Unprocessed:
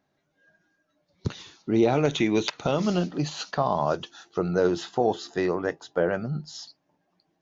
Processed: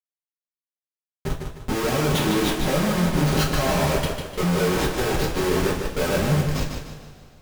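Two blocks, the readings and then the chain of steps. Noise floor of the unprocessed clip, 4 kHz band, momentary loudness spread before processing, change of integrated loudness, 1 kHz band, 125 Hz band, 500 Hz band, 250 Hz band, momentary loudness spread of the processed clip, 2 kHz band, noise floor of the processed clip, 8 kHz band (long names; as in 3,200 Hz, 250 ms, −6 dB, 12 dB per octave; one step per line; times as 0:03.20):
−75 dBFS, +7.0 dB, 12 LU, +3.5 dB, +2.5 dB, +8.0 dB, +1.0 dB, +3.0 dB, 11 LU, +7.0 dB, below −85 dBFS, can't be measured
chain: comparator with hysteresis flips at −33 dBFS
coupled-rooms reverb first 0.25 s, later 2.5 s, from −20 dB, DRR −3.5 dB
feedback echo with a swinging delay time 151 ms, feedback 37%, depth 50 cents, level −6 dB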